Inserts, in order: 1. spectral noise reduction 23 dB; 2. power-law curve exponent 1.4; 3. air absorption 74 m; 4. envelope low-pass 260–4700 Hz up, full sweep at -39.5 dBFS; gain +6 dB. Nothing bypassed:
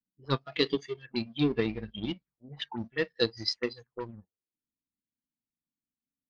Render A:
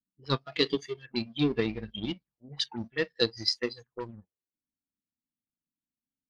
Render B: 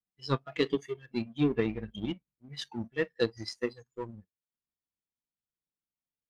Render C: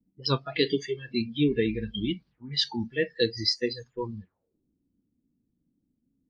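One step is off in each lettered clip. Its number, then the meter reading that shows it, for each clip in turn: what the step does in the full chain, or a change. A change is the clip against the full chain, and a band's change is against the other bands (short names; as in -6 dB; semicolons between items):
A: 3, 4 kHz band +3.0 dB; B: 4, 4 kHz band -7.0 dB; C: 2, crest factor change -4.0 dB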